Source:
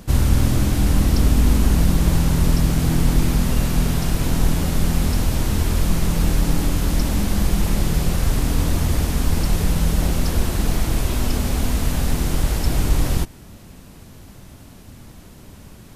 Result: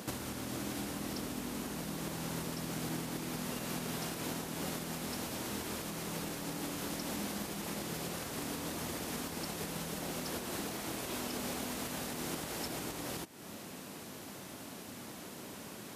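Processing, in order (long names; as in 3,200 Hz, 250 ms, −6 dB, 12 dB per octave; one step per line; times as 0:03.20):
downward compressor, threshold −28 dBFS, peak gain reduction 17.5 dB
high-pass filter 260 Hz 12 dB per octave
level +1 dB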